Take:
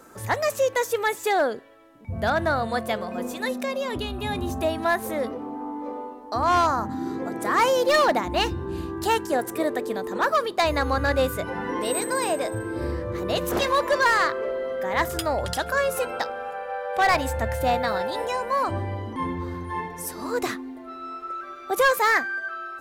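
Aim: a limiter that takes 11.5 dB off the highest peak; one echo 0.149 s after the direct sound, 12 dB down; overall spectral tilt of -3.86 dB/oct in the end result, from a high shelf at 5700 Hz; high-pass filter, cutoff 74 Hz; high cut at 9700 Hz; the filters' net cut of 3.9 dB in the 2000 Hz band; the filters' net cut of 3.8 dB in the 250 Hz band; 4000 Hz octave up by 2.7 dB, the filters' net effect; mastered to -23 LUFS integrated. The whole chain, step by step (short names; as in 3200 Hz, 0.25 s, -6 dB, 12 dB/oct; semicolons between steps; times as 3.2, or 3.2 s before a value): HPF 74 Hz; LPF 9700 Hz; bell 250 Hz -5 dB; bell 2000 Hz -6 dB; bell 4000 Hz +3.5 dB; high shelf 5700 Hz +4.5 dB; limiter -21.5 dBFS; echo 0.149 s -12 dB; gain +7.5 dB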